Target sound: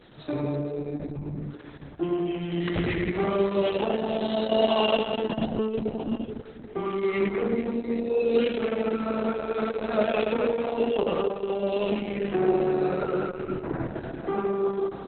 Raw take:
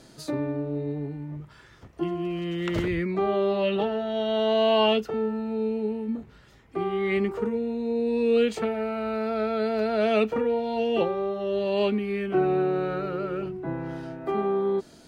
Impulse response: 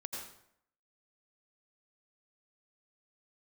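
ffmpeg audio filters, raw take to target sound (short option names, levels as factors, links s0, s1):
-af "aecho=1:1:100|250|475|812.5|1319:0.631|0.398|0.251|0.158|0.1" -ar 48000 -c:a libopus -b:a 6k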